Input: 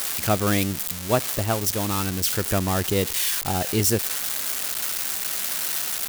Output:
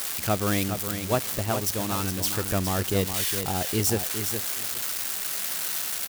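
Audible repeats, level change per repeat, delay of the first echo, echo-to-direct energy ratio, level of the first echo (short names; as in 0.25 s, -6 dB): 2, -15.0 dB, 0.413 s, -8.0 dB, -8.0 dB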